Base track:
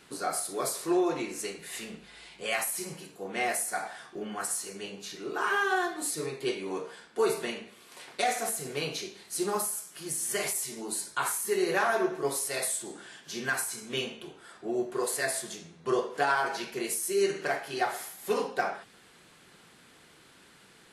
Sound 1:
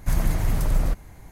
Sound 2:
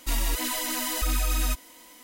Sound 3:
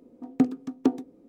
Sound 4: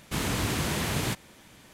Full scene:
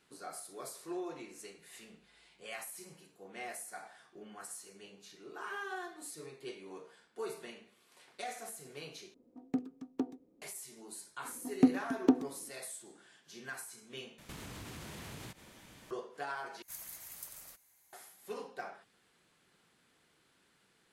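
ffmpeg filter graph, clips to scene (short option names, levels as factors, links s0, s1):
-filter_complex "[3:a]asplit=2[s0][s1];[0:a]volume=0.2[s2];[4:a]acompressor=threshold=0.00891:ratio=6:attack=3.2:release=140:knee=1:detection=peak[s3];[1:a]aderivative[s4];[s2]asplit=4[s5][s6][s7][s8];[s5]atrim=end=9.144[s9];[s0]atrim=end=1.28,asetpts=PTS-STARTPTS,volume=0.237[s10];[s6]atrim=start=10.416:end=14.184[s11];[s3]atrim=end=1.73,asetpts=PTS-STARTPTS,volume=0.668[s12];[s7]atrim=start=15.906:end=16.624[s13];[s4]atrim=end=1.31,asetpts=PTS-STARTPTS,volume=0.376[s14];[s8]atrim=start=17.926[s15];[s1]atrim=end=1.28,asetpts=PTS-STARTPTS,volume=0.708,afade=t=in:d=0.004:c=hsin,afade=t=out:st=1.276:d=0.004:c=hsin,adelay=11230[s16];[s9][s10]acrossfade=d=0.004:c1=hsin:c2=hsin[s17];[s17][s11]acrossfade=d=0.004:c1=hsin:c2=hsin[s18];[s18][s12]acrossfade=d=0.004:c1=hsin:c2=hsin[s19];[s19][s13]acrossfade=d=0.004:c1=hsin:c2=hsin[s20];[s20][s14]acrossfade=d=0.004:c1=hsin:c2=hsin[s21];[s21][s15]acrossfade=d=0.004:c1=hsin:c2=hsin[s22];[s22][s16]amix=inputs=2:normalize=0"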